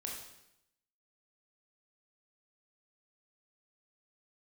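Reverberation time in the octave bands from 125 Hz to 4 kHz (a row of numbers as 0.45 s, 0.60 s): 0.90 s, 0.90 s, 0.85 s, 0.80 s, 0.80 s, 0.80 s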